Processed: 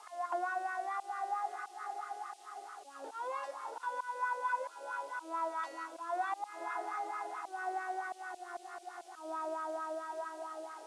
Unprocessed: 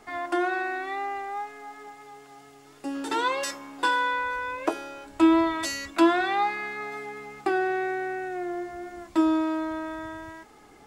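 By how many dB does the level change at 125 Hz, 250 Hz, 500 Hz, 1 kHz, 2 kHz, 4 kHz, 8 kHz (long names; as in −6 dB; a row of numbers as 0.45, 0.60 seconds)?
can't be measured, −27.5 dB, −12.5 dB, −7.5 dB, −12.5 dB, −20.5 dB, −14.5 dB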